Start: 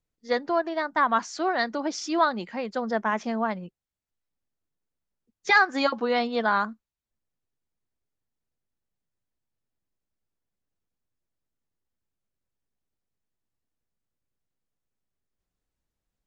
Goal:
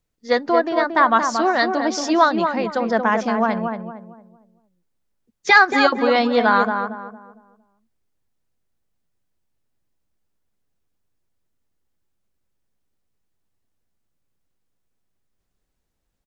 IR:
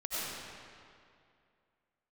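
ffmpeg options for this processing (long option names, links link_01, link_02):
-filter_complex "[0:a]asplit=2[link_01][link_02];[link_02]adelay=229,lowpass=frequency=1200:poles=1,volume=-4.5dB,asplit=2[link_03][link_04];[link_04]adelay=229,lowpass=frequency=1200:poles=1,volume=0.37,asplit=2[link_05][link_06];[link_06]adelay=229,lowpass=frequency=1200:poles=1,volume=0.37,asplit=2[link_07][link_08];[link_08]adelay=229,lowpass=frequency=1200:poles=1,volume=0.37,asplit=2[link_09][link_10];[link_10]adelay=229,lowpass=frequency=1200:poles=1,volume=0.37[link_11];[link_03][link_05][link_07][link_09][link_11]amix=inputs=5:normalize=0[link_12];[link_01][link_12]amix=inputs=2:normalize=0,volume=7dB"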